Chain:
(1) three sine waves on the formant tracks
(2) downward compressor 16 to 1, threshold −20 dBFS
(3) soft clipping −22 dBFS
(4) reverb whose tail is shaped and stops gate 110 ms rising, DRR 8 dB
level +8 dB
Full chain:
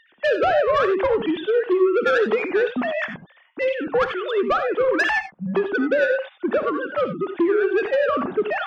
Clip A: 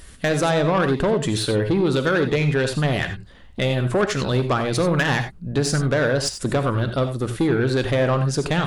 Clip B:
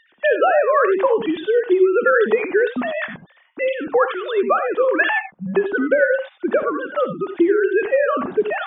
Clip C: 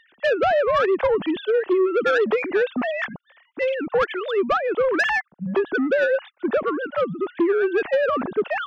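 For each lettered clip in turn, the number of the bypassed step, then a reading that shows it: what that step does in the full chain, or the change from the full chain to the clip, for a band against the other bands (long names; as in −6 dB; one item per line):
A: 1, 125 Hz band +21.5 dB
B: 3, distortion level −14 dB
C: 4, change in crest factor −3.5 dB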